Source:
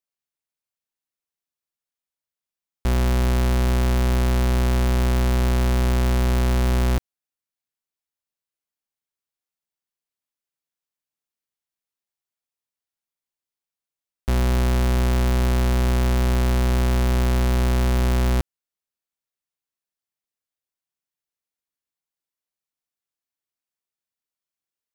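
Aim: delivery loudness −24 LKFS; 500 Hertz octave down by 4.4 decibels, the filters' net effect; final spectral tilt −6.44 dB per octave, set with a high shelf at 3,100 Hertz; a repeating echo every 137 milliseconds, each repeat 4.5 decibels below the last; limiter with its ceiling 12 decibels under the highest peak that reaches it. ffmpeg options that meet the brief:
ffmpeg -i in.wav -af "equalizer=frequency=500:width_type=o:gain=-6,highshelf=frequency=3100:gain=-6.5,alimiter=level_in=6dB:limit=-24dB:level=0:latency=1,volume=-6dB,aecho=1:1:137|274|411|548|685|822|959|1096|1233:0.596|0.357|0.214|0.129|0.0772|0.0463|0.0278|0.0167|0.01,volume=11dB" out.wav

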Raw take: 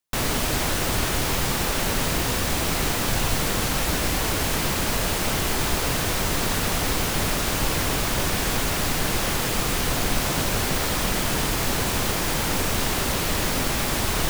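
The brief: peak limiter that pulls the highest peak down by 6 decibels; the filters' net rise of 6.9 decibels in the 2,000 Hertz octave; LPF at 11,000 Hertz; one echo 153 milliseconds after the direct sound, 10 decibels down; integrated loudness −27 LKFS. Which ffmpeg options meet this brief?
ffmpeg -i in.wav -af "lowpass=11000,equalizer=frequency=2000:width_type=o:gain=8.5,alimiter=limit=-14.5dB:level=0:latency=1,aecho=1:1:153:0.316,volume=-4dB" out.wav

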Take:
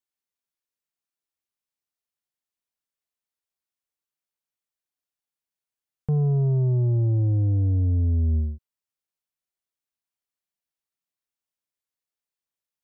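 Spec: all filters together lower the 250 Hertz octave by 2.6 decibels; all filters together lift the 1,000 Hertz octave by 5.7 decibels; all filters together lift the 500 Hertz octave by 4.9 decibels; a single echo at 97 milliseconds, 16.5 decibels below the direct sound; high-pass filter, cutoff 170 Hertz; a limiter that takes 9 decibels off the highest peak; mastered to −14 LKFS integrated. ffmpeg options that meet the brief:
ffmpeg -i in.wav -af "highpass=170,equalizer=frequency=250:width_type=o:gain=-3.5,equalizer=frequency=500:width_type=o:gain=7.5,equalizer=frequency=1000:width_type=o:gain=4.5,alimiter=level_in=2.5dB:limit=-24dB:level=0:latency=1,volume=-2.5dB,aecho=1:1:97:0.15,volume=20.5dB" out.wav

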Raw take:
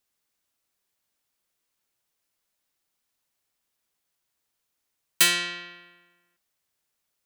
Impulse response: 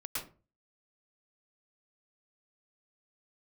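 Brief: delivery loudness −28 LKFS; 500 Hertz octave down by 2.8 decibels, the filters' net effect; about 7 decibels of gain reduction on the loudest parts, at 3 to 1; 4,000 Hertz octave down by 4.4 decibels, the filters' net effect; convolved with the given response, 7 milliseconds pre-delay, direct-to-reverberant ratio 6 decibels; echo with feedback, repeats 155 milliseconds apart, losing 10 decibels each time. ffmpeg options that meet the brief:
-filter_complex "[0:a]equalizer=frequency=500:width_type=o:gain=-4.5,equalizer=frequency=4000:width_type=o:gain=-5.5,acompressor=threshold=-25dB:ratio=3,aecho=1:1:155|310|465|620:0.316|0.101|0.0324|0.0104,asplit=2[link_01][link_02];[1:a]atrim=start_sample=2205,adelay=7[link_03];[link_02][link_03]afir=irnorm=-1:irlink=0,volume=-8dB[link_04];[link_01][link_04]amix=inputs=2:normalize=0,volume=1dB"

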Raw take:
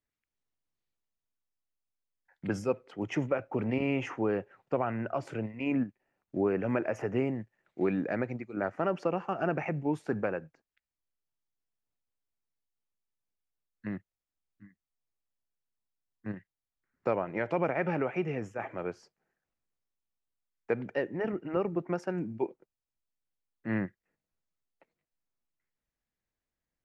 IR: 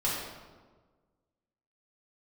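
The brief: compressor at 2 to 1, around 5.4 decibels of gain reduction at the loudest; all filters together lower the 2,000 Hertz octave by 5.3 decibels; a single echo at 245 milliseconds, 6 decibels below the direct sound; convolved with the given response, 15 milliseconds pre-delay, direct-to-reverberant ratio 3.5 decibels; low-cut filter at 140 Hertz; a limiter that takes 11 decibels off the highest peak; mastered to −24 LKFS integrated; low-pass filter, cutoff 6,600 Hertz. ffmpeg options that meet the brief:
-filter_complex "[0:a]highpass=140,lowpass=6600,equalizer=frequency=2000:width_type=o:gain=-7,acompressor=threshold=-34dB:ratio=2,alimiter=level_in=7.5dB:limit=-24dB:level=0:latency=1,volume=-7.5dB,aecho=1:1:245:0.501,asplit=2[link_01][link_02];[1:a]atrim=start_sample=2205,adelay=15[link_03];[link_02][link_03]afir=irnorm=-1:irlink=0,volume=-12dB[link_04];[link_01][link_04]amix=inputs=2:normalize=0,volume=15.5dB"

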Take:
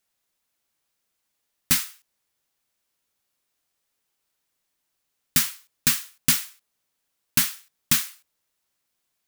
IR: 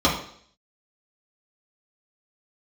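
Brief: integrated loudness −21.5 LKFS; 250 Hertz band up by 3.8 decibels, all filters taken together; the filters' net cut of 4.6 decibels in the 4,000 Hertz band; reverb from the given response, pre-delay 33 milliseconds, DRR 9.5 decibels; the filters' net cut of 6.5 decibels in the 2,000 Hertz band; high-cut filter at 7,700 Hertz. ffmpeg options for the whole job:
-filter_complex "[0:a]lowpass=7700,equalizer=frequency=250:width_type=o:gain=4.5,equalizer=frequency=2000:width_type=o:gain=-7.5,equalizer=frequency=4000:width_type=o:gain=-3.5,asplit=2[link_01][link_02];[1:a]atrim=start_sample=2205,adelay=33[link_03];[link_02][link_03]afir=irnorm=-1:irlink=0,volume=-28dB[link_04];[link_01][link_04]amix=inputs=2:normalize=0,volume=7.5dB"

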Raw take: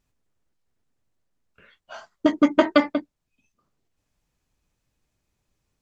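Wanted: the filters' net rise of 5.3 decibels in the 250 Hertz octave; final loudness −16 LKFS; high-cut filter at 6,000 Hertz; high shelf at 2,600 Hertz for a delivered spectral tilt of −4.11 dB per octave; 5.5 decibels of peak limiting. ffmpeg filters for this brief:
ffmpeg -i in.wav -af "lowpass=6000,equalizer=frequency=250:width_type=o:gain=6.5,highshelf=frequency=2600:gain=-3,volume=5dB,alimiter=limit=-1.5dB:level=0:latency=1" out.wav

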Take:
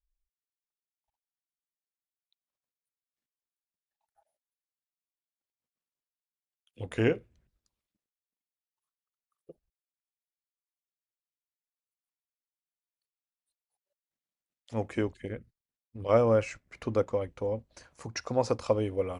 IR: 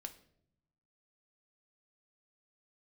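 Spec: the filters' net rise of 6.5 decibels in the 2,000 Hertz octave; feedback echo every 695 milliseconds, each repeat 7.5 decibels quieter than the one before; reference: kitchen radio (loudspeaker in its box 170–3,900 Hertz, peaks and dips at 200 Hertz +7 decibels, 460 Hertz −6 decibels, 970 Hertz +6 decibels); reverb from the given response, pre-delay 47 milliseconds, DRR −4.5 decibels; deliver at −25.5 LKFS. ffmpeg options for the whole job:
-filter_complex "[0:a]equalizer=frequency=2000:width_type=o:gain=8,aecho=1:1:695|1390|2085|2780|3475:0.422|0.177|0.0744|0.0312|0.0131,asplit=2[link_01][link_02];[1:a]atrim=start_sample=2205,adelay=47[link_03];[link_02][link_03]afir=irnorm=-1:irlink=0,volume=8.5dB[link_04];[link_01][link_04]amix=inputs=2:normalize=0,highpass=170,equalizer=frequency=200:width_type=q:width=4:gain=7,equalizer=frequency=460:width_type=q:width=4:gain=-6,equalizer=frequency=970:width_type=q:width=4:gain=6,lowpass=frequency=3900:width=0.5412,lowpass=frequency=3900:width=1.3066,volume=0.5dB"

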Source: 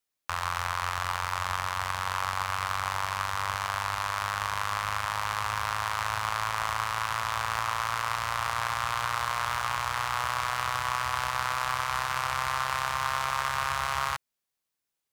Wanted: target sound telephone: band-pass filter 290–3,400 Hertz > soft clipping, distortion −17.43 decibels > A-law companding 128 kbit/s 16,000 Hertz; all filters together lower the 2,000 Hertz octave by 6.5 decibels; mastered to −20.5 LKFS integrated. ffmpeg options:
ffmpeg -i in.wav -af "highpass=290,lowpass=3400,equalizer=frequency=2000:width_type=o:gain=-8.5,asoftclip=threshold=-23dB,volume=14.5dB" -ar 16000 -c:a pcm_alaw out.wav

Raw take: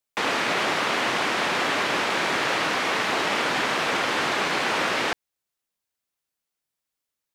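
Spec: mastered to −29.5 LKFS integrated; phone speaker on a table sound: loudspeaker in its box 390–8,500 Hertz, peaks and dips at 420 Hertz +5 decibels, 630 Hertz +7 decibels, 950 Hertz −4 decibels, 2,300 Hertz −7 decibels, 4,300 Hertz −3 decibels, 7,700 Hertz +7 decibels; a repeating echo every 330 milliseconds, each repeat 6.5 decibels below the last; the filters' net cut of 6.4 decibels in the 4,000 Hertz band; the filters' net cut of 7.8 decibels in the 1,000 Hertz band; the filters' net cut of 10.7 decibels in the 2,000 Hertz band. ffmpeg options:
ffmpeg -i in.wav -af "highpass=frequency=390:width=0.5412,highpass=frequency=390:width=1.3066,equalizer=frequency=420:width_type=q:width=4:gain=5,equalizer=frequency=630:width_type=q:width=4:gain=7,equalizer=frequency=950:width_type=q:width=4:gain=-4,equalizer=frequency=2300:width_type=q:width=4:gain=-7,equalizer=frequency=4300:width_type=q:width=4:gain=-3,equalizer=frequency=7700:width_type=q:width=4:gain=7,lowpass=frequency=8500:width=0.5412,lowpass=frequency=8500:width=1.3066,equalizer=frequency=1000:width_type=o:gain=-8,equalizer=frequency=2000:width_type=o:gain=-7.5,equalizer=frequency=4000:width_type=o:gain=-3,aecho=1:1:330|660|990|1320|1650|1980:0.473|0.222|0.105|0.0491|0.0231|0.0109,volume=-1.5dB" out.wav

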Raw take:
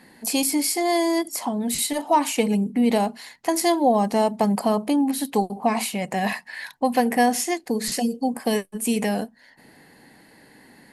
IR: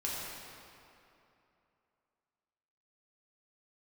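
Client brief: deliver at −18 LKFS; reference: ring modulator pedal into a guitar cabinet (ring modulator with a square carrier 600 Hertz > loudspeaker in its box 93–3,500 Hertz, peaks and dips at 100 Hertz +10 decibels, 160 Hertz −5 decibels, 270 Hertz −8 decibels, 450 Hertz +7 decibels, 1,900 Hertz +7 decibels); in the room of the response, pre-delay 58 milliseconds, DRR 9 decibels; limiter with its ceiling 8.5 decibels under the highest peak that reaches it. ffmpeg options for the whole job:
-filter_complex "[0:a]alimiter=limit=-16.5dB:level=0:latency=1,asplit=2[link_01][link_02];[1:a]atrim=start_sample=2205,adelay=58[link_03];[link_02][link_03]afir=irnorm=-1:irlink=0,volume=-13.5dB[link_04];[link_01][link_04]amix=inputs=2:normalize=0,aeval=exprs='val(0)*sgn(sin(2*PI*600*n/s))':channel_layout=same,highpass=93,equalizer=frequency=100:width_type=q:width=4:gain=10,equalizer=frequency=160:width_type=q:width=4:gain=-5,equalizer=frequency=270:width_type=q:width=4:gain=-8,equalizer=frequency=450:width_type=q:width=4:gain=7,equalizer=frequency=1900:width_type=q:width=4:gain=7,lowpass=frequency=3500:width=0.5412,lowpass=frequency=3500:width=1.3066,volume=6.5dB"

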